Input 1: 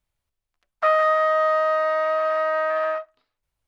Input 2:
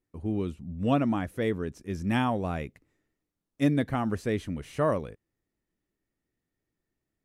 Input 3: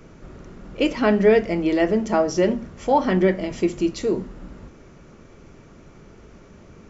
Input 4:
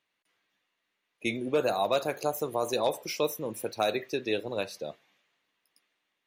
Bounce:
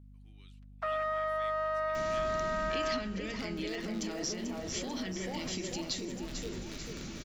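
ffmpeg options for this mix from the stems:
-filter_complex "[0:a]alimiter=limit=-17.5dB:level=0:latency=1,aeval=exprs='val(0)+0.00631*(sin(2*PI*50*n/s)+sin(2*PI*2*50*n/s)/2+sin(2*PI*3*50*n/s)/3+sin(2*PI*4*50*n/s)/4+sin(2*PI*5*50*n/s)/5)':c=same,volume=-8dB,asplit=2[a][b];[b]volume=-20.5dB[c];[1:a]highpass=1.1k,volume=-16dB,asplit=2[d][e];[e]volume=-20dB[f];[2:a]alimiter=limit=-18dB:level=0:latency=1,acompressor=threshold=-39dB:ratio=2,crystalizer=i=2.5:c=0,adelay=1950,volume=2dB,asplit=2[g][h];[h]volume=-10.5dB[i];[3:a]lowshelf=f=330:g=11,alimiter=limit=-23dB:level=0:latency=1:release=271,acrusher=bits=5:dc=4:mix=0:aa=0.000001,adelay=2150,volume=-18dB,asplit=2[j][k];[k]volume=-5.5dB[l];[d][g][j]amix=inputs=3:normalize=0,equalizer=f=250:t=o:w=1:g=5,equalizer=f=500:t=o:w=1:g=-10,equalizer=f=1k:t=o:w=1:g=-6,equalizer=f=2k:t=o:w=1:g=3,equalizer=f=4k:t=o:w=1:g=11,acompressor=threshold=-39dB:ratio=2.5,volume=0dB[m];[c][f][i][l]amix=inputs=4:normalize=0,aecho=0:1:440|880|1320|1760|2200|2640|3080|3520:1|0.55|0.303|0.166|0.0915|0.0503|0.0277|0.0152[n];[a][m][n]amix=inputs=3:normalize=0"

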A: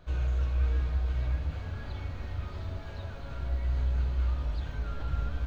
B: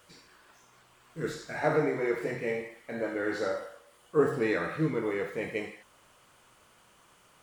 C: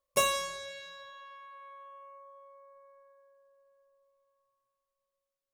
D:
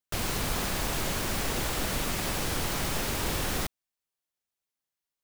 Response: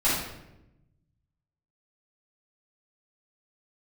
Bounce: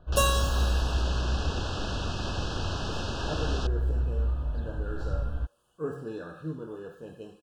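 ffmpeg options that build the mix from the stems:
-filter_complex "[0:a]lowpass=f=1.3k:p=1,volume=1dB[a];[1:a]lowshelf=f=190:g=10.5,adelay=1650,volume=-11dB[b];[2:a]acrusher=bits=6:mix=0:aa=0.5,volume=2dB[c];[3:a]lowpass=f=5.4k:w=0.5412,lowpass=f=5.4k:w=1.3066,volume=-2dB[d];[a][b][c][d]amix=inputs=4:normalize=0,asuperstop=centerf=2100:order=20:qfactor=2.6"

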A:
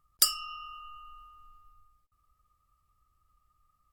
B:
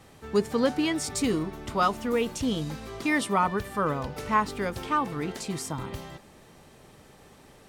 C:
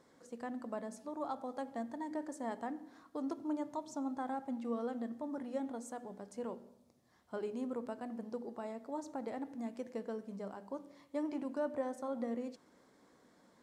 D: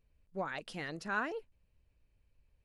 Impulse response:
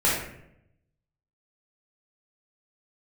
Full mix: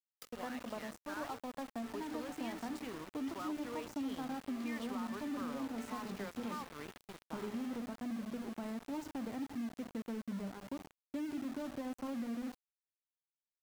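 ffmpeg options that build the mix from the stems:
-filter_complex "[0:a]volume=-17.5dB[a];[1:a]highshelf=f=5.6k:g=-9.5,adelay=1600,volume=-16dB[b];[2:a]asubboost=boost=10.5:cutoff=160,alimiter=level_in=7.5dB:limit=-24dB:level=0:latency=1:release=384,volume=-7.5dB,highshelf=f=2.7k:g=-4.5,volume=1.5dB[c];[3:a]volume=-14dB[d];[b][d]amix=inputs=2:normalize=0,asplit=2[e][f];[f]highpass=f=720:p=1,volume=12dB,asoftclip=type=tanh:threshold=-26.5dB[g];[e][g]amix=inputs=2:normalize=0,lowpass=f=2.7k:p=1,volume=-6dB,alimiter=level_in=12dB:limit=-24dB:level=0:latency=1:release=43,volume=-12dB,volume=0dB[h];[a][c][h]amix=inputs=3:normalize=0,acrossover=split=180|3200[i][j][k];[i]acompressor=threshold=-58dB:ratio=4[l];[j]acompressor=threshold=-37dB:ratio=4[m];[k]acompressor=threshold=-59dB:ratio=4[n];[l][m][n]amix=inputs=3:normalize=0,aeval=exprs='val(0)*gte(abs(val(0)),0.00562)':c=same"

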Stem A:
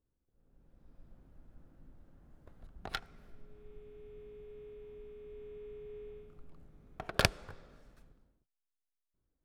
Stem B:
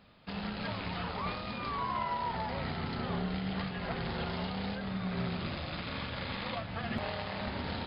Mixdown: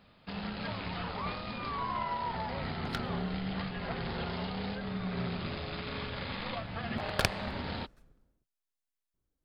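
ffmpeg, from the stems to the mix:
-filter_complex "[0:a]volume=-1dB[a];[1:a]volume=-0.5dB[b];[a][b]amix=inputs=2:normalize=0"

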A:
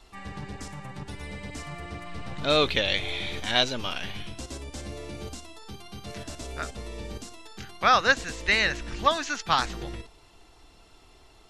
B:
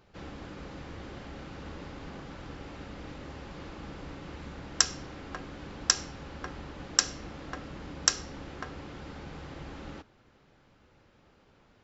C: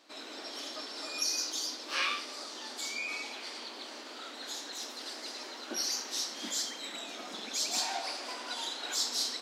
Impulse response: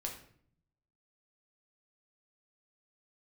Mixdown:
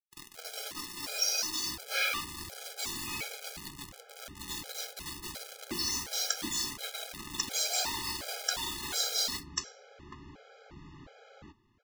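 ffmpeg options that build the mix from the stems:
-filter_complex "[1:a]adelay=1500,volume=-1.5dB[a];[2:a]acontrast=79,acrusher=bits=4:mix=0:aa=0.000001,volume=-1.5dB,asplit=2[b][c];[c]volume=-6dB[d];[3:a]atrim=start_sample=2205[e];[d][e]afir=irnorm=-1:irlink=0[f];[a][b][f]amix=inputs=3:normalize=0,flanger=delay=5.7:depth=9.4:regen=-72:speed=0.28:shape=triangular,afftfilt=real='re*gt(sin(2*PI*1.4*pts/sr)*(1-2*mod(floor(b*sr/1024/420),2)),0)':imag='im*gt(sin(2*PI*1.4*pts/sr)*(1-2*mod(floor(b*sr/1024/420),2)),0)':win_size=1024:overlap=0.75"

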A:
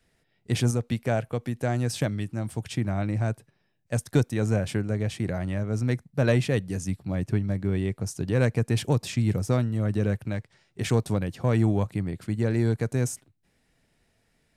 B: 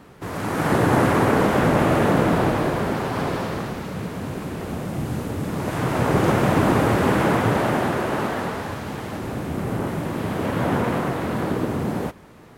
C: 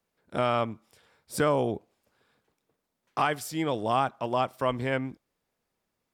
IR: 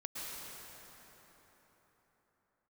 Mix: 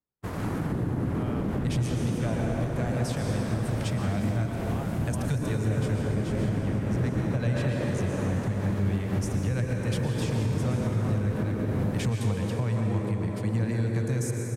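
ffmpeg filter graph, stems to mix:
-filter_complex "[0:a]adelay=1150,volume=-0.5dB,asplit=2[a][b];[b]volume=-3.5dB[c];[1:a]lowshelf=f=76:g=10.5,volume=-3dB[d];[2:a]adelay=800,volume=-17dB[e];[a][d]amix=inputs=2:normalize=0,acrossover=split=330[f][g];[g]acompressor=threshold=-36dB:ratio=6[h];[f][h]amix=inputs=2:normalize=0,alimiter=limit=-19.5dB:level=0:latency=1:release=187,volume=0dB[i];[3:a]atrim=start_sample=2205[j];[c][j]afir=irnorm=-1:irlink=0[k];[e][i][k]amix=inputs=3:normalize=0,agate=range=-47dB:threshold=-33dB:ratio=16:detection=peak,alimiter=limit=-18dB:level=0:latency=1:release=195"

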